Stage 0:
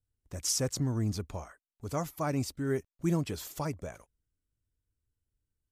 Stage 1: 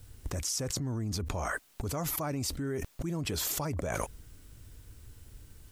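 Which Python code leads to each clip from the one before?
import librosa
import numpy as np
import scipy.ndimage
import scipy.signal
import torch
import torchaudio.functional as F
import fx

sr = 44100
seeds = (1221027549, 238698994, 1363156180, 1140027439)

y = fx.env_flatten(x, sr, amount_pct=100)
y = y * librosa.db_to_amplitude(-7.5)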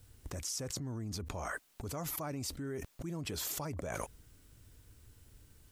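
y = fx.low_shelf(x, sr, hz=60.0, db=-6.0)
y = y * librosa.db_to_amplitude(-5.5)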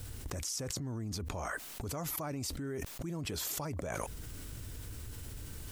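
y = fx.env_flatten(x, sr, amount_pct=70)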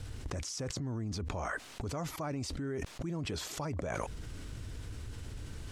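y = fx.air_absorb(x, sr, metres=72.0)
y = y * librosa.db_to_amplitude(2.0)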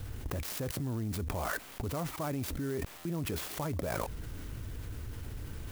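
y = fx.buffer_glitch(x, sr, at_s=(2.97,), block=512, repeats=6)
y = fx.clock_jitter(y, sr, seeds[0], jitter_ms=0.054)
y = y * librosa.db_to_amplitude(2.0)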